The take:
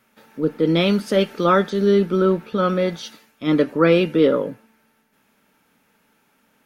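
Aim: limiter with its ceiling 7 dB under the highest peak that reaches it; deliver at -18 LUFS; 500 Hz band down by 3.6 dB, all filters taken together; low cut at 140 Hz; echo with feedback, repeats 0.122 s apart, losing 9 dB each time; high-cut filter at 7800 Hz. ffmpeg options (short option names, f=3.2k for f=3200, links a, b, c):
-af "highpass=140,lowpass=7.8k,equalizer=f=500:t=o:g=-4.5,alimiter=limit=-13.5dB:level=0:latency=1,aecho=1:1:122|244|366|488:0.355|0.124|0.0435|0.0152,volume=5.5dB"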